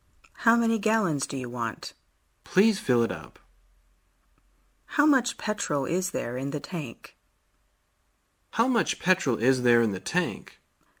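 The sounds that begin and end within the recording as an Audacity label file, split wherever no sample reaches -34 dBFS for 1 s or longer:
4.920000	7.060000	sound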